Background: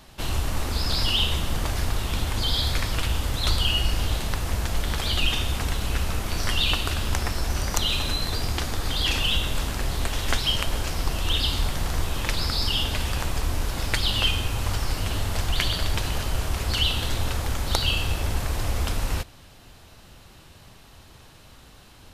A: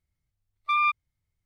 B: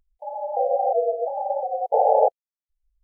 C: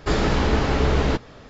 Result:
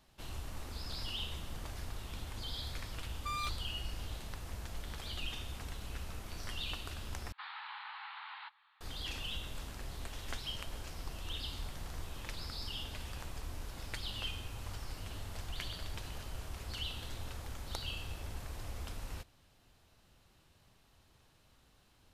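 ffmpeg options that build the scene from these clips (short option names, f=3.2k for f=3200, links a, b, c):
-filter_complex "[0:a]volume=-17.5dB[a];[1:a]asoftclip=type=tanh:threshold=-29.5dB[b];[3:a]asuperpass=centerf=1900:order=20:qfactor=0.55[c];[a]asplit=2[d][e];[d]atrim=end=7.324[f];[c]atrim=end=1.49,asetpts=PTS-STARTPTS,volume=-17.5dB[g];[e]atrim=start=8.806[h];[b]atrim=end=1.45,asetpts=PTS-STARTPTS,volume=-7.5dB,afade=t=in:d=0.004:c=hsin,afade=t=out:st=1.446:d=0.004:c=hsin,adelay=2570[i];[f][g]acrossfade=d=0.004:c1=hsin:c2=hsin[j];[j][h]acrossfade=d=0.004:c1=hsin:c2=hsin[k];[k][i]amix=inputs=2:normalize=0"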